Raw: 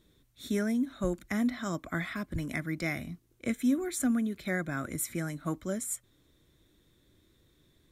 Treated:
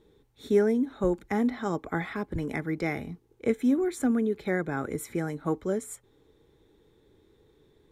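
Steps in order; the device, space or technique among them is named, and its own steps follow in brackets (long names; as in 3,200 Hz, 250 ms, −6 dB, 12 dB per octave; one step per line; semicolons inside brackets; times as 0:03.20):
inside a helmet (high-shelf EQ 4,500 Hz −9.5 dB; hollow resonant body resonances 440/830 Hz, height 16 dB, ringing for 45 ms)
level +1 dB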